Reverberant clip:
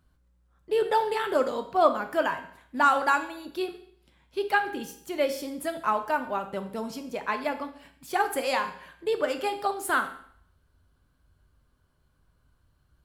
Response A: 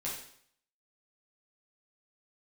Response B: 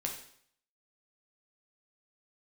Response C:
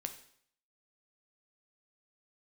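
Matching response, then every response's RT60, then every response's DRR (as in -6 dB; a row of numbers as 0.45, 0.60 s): C; 0.60, 0.60, 0.60 s; -6.5, 0.5, 6.0 dB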